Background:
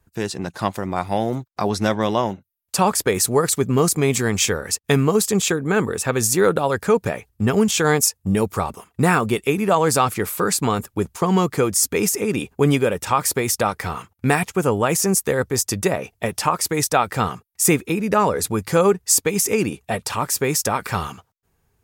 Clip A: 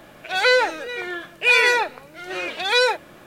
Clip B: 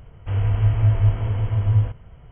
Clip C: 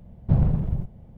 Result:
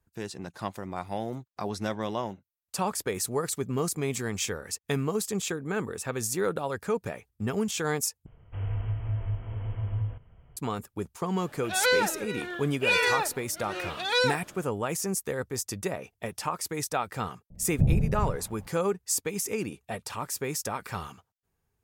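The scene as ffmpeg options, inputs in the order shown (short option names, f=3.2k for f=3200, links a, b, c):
-filter_complex "[0:a]volume=-11.5dB[a];[2:a]alimiter=limit=-12dB:level=0:latency=1:release=309[b];[1:a]equalizer=f=2.2k:w=5:g=-6.5[c];[3:a]acrossover=split=710[d][e];[e]adelay=350[f];[d][f]amix=inputs=2:normalize=0[g];[a]asplit=2[h][i];[h]atrim=end=8.264[j];[b]atrim=end=2.31,asetpts=PTS-STARTPTS,volume=-10.5dB[k];[i]atrim=start=10.566[l];[c]atrim=end=3.26,asetpts=PTS-STARTPTS,volume=-6.5dB,afade=t=in:d=0.004:c=hsin,afade=t=out:st=3.256:d=0.004:c=hsin,adelay=11400[m];[g]atrim=end=1.17,asetpts=PTS-STARTPTS,volume=-3dB,afade=t=in:d=0.004:c=hsin,afade=t=out:st=1.166:d=0.004:c=hsin,adelay=17500[n];[j][k]acrossfade=d=0.004:c1=hsin:c2=hsin[o];[o][l]acrossfade=d=0.004:c1=hsin:c2=hsin[p];[p][m][n]amix=inputs=3:normalize=0"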